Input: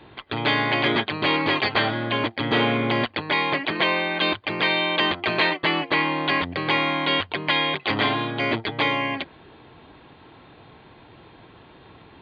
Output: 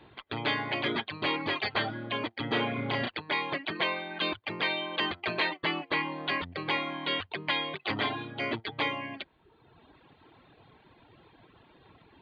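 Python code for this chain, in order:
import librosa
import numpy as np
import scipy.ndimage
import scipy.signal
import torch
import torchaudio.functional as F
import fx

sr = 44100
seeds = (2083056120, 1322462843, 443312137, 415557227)

y = fx.dereverb_blind(x, sr, rt60_s=1.1)
y = fx.doubler(y, sr, ms=33.0, db=-2.0, at=(2.76, 3.16), fade=0.02)
y = y * 10.0 ** (-7.0 / 20.0)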